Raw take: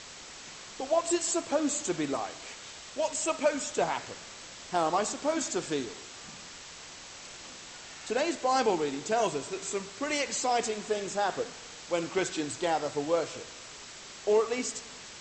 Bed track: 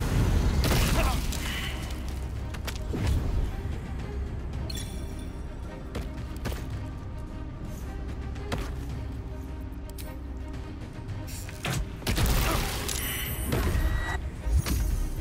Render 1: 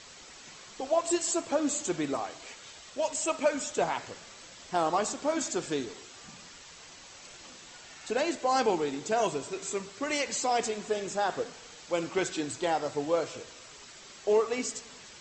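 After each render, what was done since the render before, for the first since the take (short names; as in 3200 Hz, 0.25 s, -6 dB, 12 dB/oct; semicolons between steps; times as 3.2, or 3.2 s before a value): denoiser 6 dB, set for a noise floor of -47 dBFS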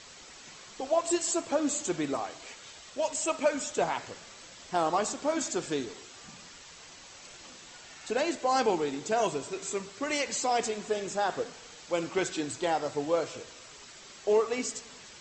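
nothing audible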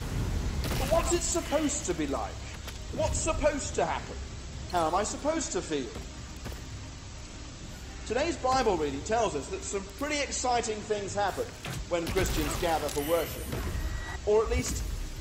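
add bed track -7 dB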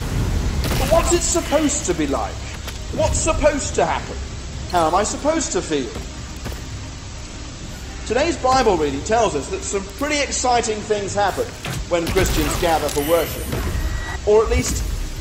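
gain +10.5 dB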